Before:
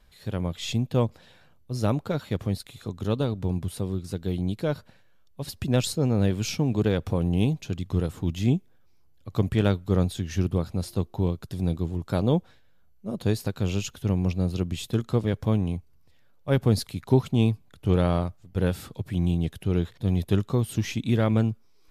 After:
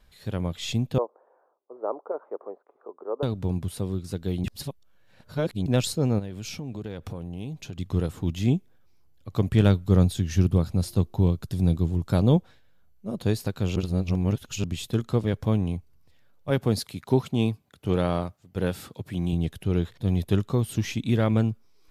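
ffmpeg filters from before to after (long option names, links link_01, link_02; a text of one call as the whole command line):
ffmpeg -i in.wav -filter_complex "[0:a]asettb=1/sr,asplit=3[link_01][link_02][link_03];[link_01]atrim=end=0.984[link_04];[link_02]atrim=start=0.98:end=3.23,asetpts=PTS-STARTPTS,afade=type=in:duration=0.004:curve=qsin,afade=type=out:start_time=2.246:duration=0.004:curve=qsin,asuperpass=centerf=670:order=8:qfactor=0.8[link_05];[link_03]atrim=start=3.226[link_06];[link_04][link_05]acrossfade=duration=0.004:curve1=hsin:curve2=qsin[link_07];[link_07][link_06]acrossfade=duration=0.004:curve1=qsin:curve2=hsin,asplit=3[link_08][link_09][link_10];[link_08]afade=type=out:start_time=6.18:duration=0.02[link_11];[link_09]acompressor=threshold=-32dB:ratio=5:attack=3.2:release=140:knee=1:detection=peak,afade=type=in:start_time=6.18:duration=0.02,afade=type=out:start_time=7.77:duration=0.02[link_12];[link_10]afade=type=in:start_time=7.77:duration=0.02[link_13];[link_11][link_12][link_13]amix=inputs=3:normalize=0,asettb=1/sr,asplit=3[link_14][link_15][link_16];[link_14]atrim=end=9.544[link_17];[link_15]atrim=start=9.54:end=12.37,asetpts=PTS-STARTPTS,afade=type=in:duration=0.004:curve=qsin,afade=type=out:start_time=2.826:duration=0.004:curve=qsin,bass=frequency=250:gain=5,treble=frequency=4000:gain=3[link_18];[link_16]atrim=start=12.366[link_19];[link_17][link_18]acrossfade=duration=0.004:curve1=hsin:curve2=qsin[link_20];[link_20][link_19]acrossfade=duration=0.004:curve1=qsin:curve2=hsin,asettb=1/sr,asplit=3[link_21][link_22][link_23];[link_21]atrim=end=16.504[link_24];[link_22]atrim=start=16.5:end=19.33,asetpts=PTS-STARTPTS,afade=type=in:duration=0.004:curve=qsin,afade=type=out:start_time=2.826:duration=0.004:curve=qsin,highpass=frequency=150:poles=1[link_25];[link_23]atrim=start=19.326[link_26];[link_24][link_25]acrossfade=duration=0.004:curve1=hsin:curve2=qsin[link_27];[link_27][link_26]acrossfade=duration=0.004:curve1=qsin:curve2=hsin,asplit=5[link_28][link_29][link_30][link_31][link_32];[link_28]atrim=end=4.442[link_33];[link_29]atrim=start=4.438:end=5.662,asetpts=PTS-STARTPTS,areverse[link_34];[link_30]atrim=start=5.658:end=13.762[link_35];[link_31]atrim=start=13.758:end=14.642,asetpts=PTS-STARTPTS,areverse[link_36];[link_32]atrim=start=14.638[link_37];[link_33][link_34]acrossfade=duration=0.004:curve1=hsin:curve2=hsin[link_38];[link_38][link_35]acrossfade=duration=0.004:curve1=hsin:curve2=hsin[link_39];[link_39][link_36]acrossfade=duration=0.004:curve1=hsin:curve2=hsin[link_40];[link_40][link_37]acrossfade=duration=0.004:curve1=hsin:curve2=hsin" out.wav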